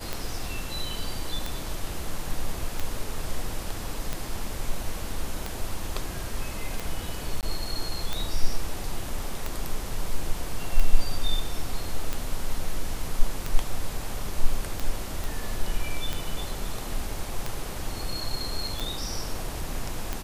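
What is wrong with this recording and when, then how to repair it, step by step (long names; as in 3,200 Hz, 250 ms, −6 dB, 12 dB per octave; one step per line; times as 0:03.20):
scratch tick 45 rpm −14 dBFS
0:07.41–0:07.43: drop-out 18 ms
0:15.24: click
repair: click removal
repair the gap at 0:07.41, 18 ms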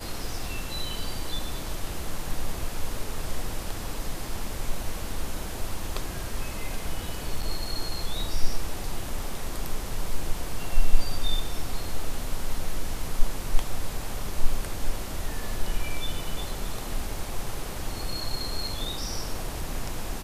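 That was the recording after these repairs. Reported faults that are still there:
none of them is left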